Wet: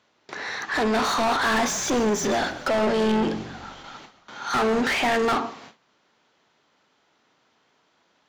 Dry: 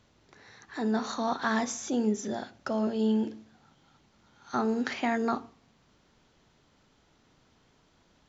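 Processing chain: gate with hold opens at -52 dBFS; low shelf 76 Hz -8.5 dB; overdrive pedal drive 32 dB, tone 3200 Hz, clips at -15 dBFS; 1.44–4.83 frequency-shifting echo 0.136 s, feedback 49%, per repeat -47 Hz, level -15 dB

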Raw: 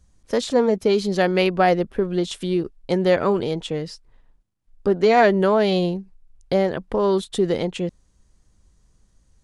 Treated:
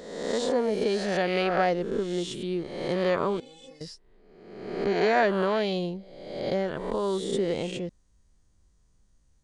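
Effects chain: spectral swells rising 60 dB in 1.10 s; downsampling 22050 Hz; 3.4–3.81 metallic resonator 260 Hz, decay 0.23 s, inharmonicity 0.008; gain -9 dB

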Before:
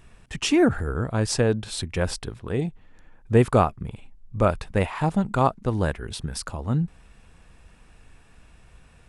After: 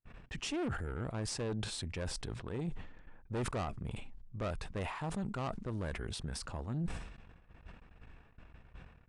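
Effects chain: tube stage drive 21 dB, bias 0.5; gate -51 dBFS, range -41 dB; reverse; compressor 6:1, threshold -36 dBFS, peak gain reduction 13.5 dB; reverse; limiter -31.5 dBFS, peak gain reduction 9 dB; low-pass opened by the level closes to 1900 Hz, open at -37.5 dBFS; downsampling 22050 Hz; sustainer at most 58 dB/s; gain +1.5 dB

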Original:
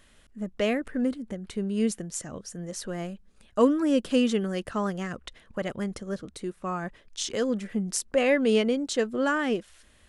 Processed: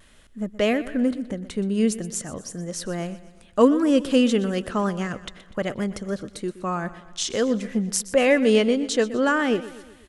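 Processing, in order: vibrato 0.54 Hz 15 cents; on a send: feedback echo 0.123 s, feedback 51%, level -16 dB; on the sum: gain +4.5 dB

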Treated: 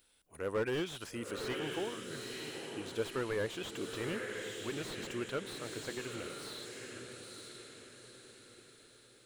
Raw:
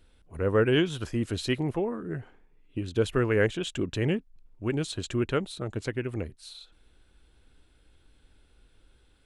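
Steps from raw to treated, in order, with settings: RIAA curve recording; on a send: diffused feedback echo 0.93 s, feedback 45%, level -6.5 dB; on the sum: slew limiter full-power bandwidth 55 Hz; gain -6.5 dB

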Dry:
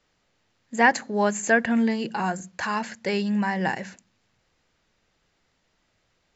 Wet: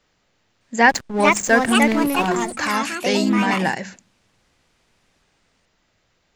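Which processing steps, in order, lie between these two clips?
dynamic EQ 5700 Hz, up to +6 dB, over -46 dBFS, Q 1.1; 0.89–2.28 backlash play -25 dBFS; echoes that change speed 0.61 s, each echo +4 st, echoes 2; gain +4 dB

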